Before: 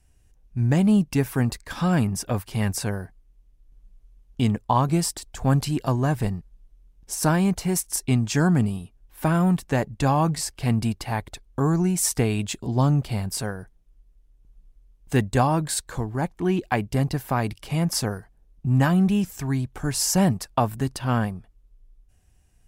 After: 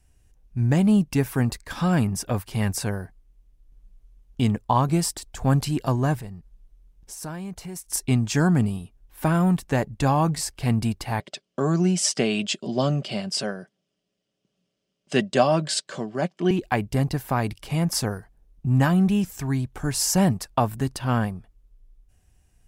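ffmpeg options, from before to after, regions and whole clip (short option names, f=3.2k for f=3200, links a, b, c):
-filter_complex "[0:a]asettb=1/sr,asplit=3[a][b][c];[a]atrim=end=6.194[d];[b]atrim=start=6.19:end=7.9,asetpts=PTS-STARTPTS,afade=t=in:d=0.004:c=qsin,afade=t=out:st=1.706:d=0.004:c=qsin,bandreject=f=260:w=8.3,acompressor=threshold=-42dB:ratio=2:attack=3.2:release=140:knee=1:detection=peak[e];[c]atrim=start=7.896[f];[d][e]acrossfade=d=0.004:c1=hsin:c2=qsin[g];[g][f]acrossfade=d=0.004:c1=qsin:c2=hsin,asettb=1/sr,asplit=3[h][i][j];[h]atrim=end=11.204[k];[i]atrim=start=11.2:end=16.51,asetpts=PTS-STARTPTS,afade=t=in:d=0.004:c=qsin,afade=t=out:st=5.306:d=0.004:c=qsin,highpass=f=160:w=0.5412,highpass=f=160:w=1.3066,equalizer=f=620:t=q:w=4:g=9,equalizer=f=880:t=q:w=4:g=-9,equalizer=f=3k:t=q:w=4:g=10,equalizer=f=5k:t=q:w=4:g=8,lowpass=f=8.2k:w=0.5412,lowpass=f=8.2k:w=1.3066,aecho=1:1:5.2:0.35,atrim=end_sample=234171[l];[j]atrim=start=16.506[m];[k][l]acrossfade=d=0.004:c1=hsin:c2=qsin[n];[n][m]acrossfade=d=0.004:c1=qsin:c2=hsin"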